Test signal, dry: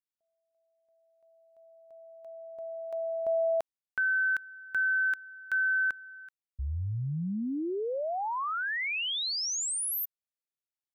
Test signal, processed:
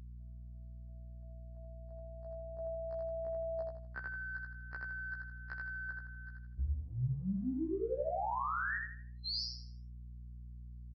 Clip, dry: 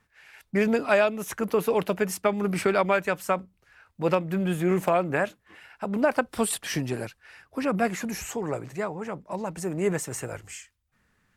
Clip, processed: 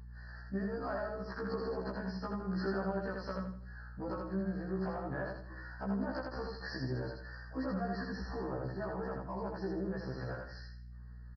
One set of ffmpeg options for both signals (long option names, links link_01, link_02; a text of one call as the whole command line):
ffmpeg -i in.wav -filter_complex "[0:a]afftfilt=real='re*(1-between(b*sr/4096,1900,4100))':imag='im*(1-between(b*sr/4096,1900,4100))':win_size=4096:overlap=0.75,adynamicequalizer=threshold=0.00447:dfrequency=2200:dqfactor=2.1:tfrequency=2200:tqfactor=2.1:attack=5:release=100:ratio=0.3:range=2.5:mode=cutabove:tftype=bell,acompressor=threshold=-36dB:ratio=6:attack=3:release=79:knee=1:detection=peak,aresample=11025,aresample=44100,asplit=2[link_01][link_02];[link_02]aecho=0:1:81|162|243|324|405:0.708|0.248|0.0867|0.0304|0.0106[link_03];[link_01][link_03]amix=inputs=2:normalize=0,aeval=exprs='val(0)+0.00316*(sin(2*PI*60*n/s)+sin(2*PI*2*60*n/s)/2+sin(2*PI*3*60*n/s)/3+sin(2*PI*4*60*n/s)/4+sin(2*PI*5*60*n/s)/5)':channel_layout=same,afftfilt=real='re*1.73*eq(mod(b,3),0)':imag='im*1.73*eq(mod(b,3),0)':win_size=2048:overlap=0.75,volume=1.5dB" out.wav